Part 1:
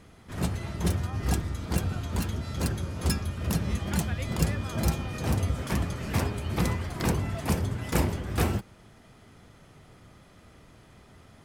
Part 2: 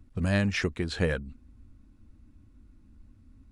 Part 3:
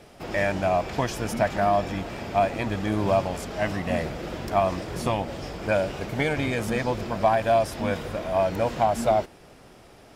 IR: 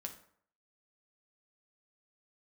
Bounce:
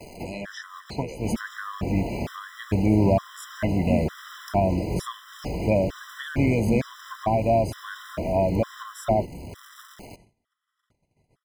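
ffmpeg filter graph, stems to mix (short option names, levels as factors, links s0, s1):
-filter_complex "[0:a]acompressor=threshold=0.0355:ratio=6,asoftclip=type=tanh:threshold=0.0211,adelay=1400,volume=0.944[s0];[1:a]highpass=f=990:p=1,acontrast=37,volume=0.668,asplit=2[s1][s2];[2:a]acontrast=32,acrusher=bits=8:dc=4:mix=0:aa=0.000001,volume=1.33[s3];[s2]apad=whole_len=447970[s4];[s3][s4]sidechaincompress=threshold=0.00891:ratio=10:attack=16:release=165[s5];[s0][s1][s5]amix=inputs=3:normalize=0,acrossover=split=420[s6][s7];[s7]acompressor=threshold=0.00794:ratio=1.5[s8];[s6][s8]amix=inputs=2:normalize=0,agate=range=0.0794:threshold=0.00316:ratio=16:detection=peak,afftfilt=real='re*gt(sin(2*PI*1.1*pts/sr)*(1-2*mod(floor(b*sr/1024/1000),2)),0)':imag='im*gt(sin(2*PI*1.1*pts/sr)*(1-2*mod(floor(b*sr/1024/1000),2)),0)':win_size=1024:overlap=0.75"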